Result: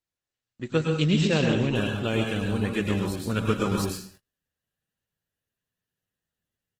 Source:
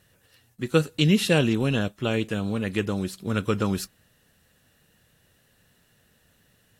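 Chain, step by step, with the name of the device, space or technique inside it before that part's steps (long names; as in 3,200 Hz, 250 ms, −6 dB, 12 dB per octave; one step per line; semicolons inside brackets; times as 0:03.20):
speakerphone in a meeting room (convolution reverb RT60 0.50 s, pre-delay 100 ms, DRR 1 dB; far-end echo of a speakerphone 90 ms, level −30 dB; automatic gain control gain up to 7.5 dB; noise gate −43 dBFS, range −27 dB; level −8 dB; Opus 16 kbit/s 48,000 Hz)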